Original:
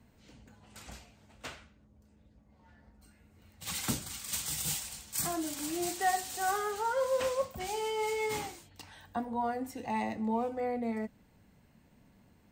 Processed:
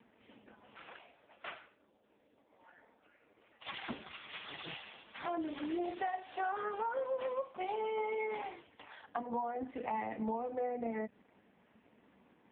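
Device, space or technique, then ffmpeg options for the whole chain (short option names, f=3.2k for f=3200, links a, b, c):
voicemail: -filter_complex "[0:a]asplit=3[a][b][c];[a]afade=t=out:st=0.88:d=0.02[d];[b]highpass=f=270:w=0.5412,highpass=f=270:w=1.3066,afade=t=in:st=0.88:d=0.02,afade=t=out:st=3.64:d=0.02[e];[c]afade=t=in:st=3.64:d=0.02[f];[d][e][f]amix=inputs=3:normalize=0,highpass=320,lowpass=3.3k,acompressor=threshold=-39dB:ratio=10,volume=6.5dB" -ar 8000 -c:a libopencore_amrnb -b:a 4750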